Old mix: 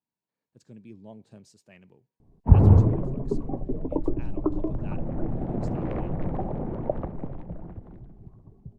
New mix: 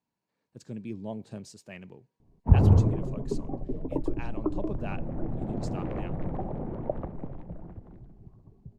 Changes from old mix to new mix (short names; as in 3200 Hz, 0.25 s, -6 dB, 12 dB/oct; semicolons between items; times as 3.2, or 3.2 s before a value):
speech +8.5 dB; background -3.5 dB